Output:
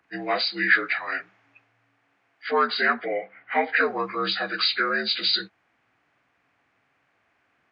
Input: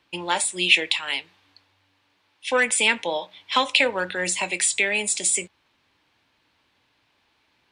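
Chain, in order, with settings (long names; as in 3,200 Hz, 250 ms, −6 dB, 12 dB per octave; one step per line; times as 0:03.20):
partials spread apart or drawn together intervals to 81%
0:02.50–0:03.75: low-pass filter 3,900 Hz → 2,300 Hz 12 dB per octave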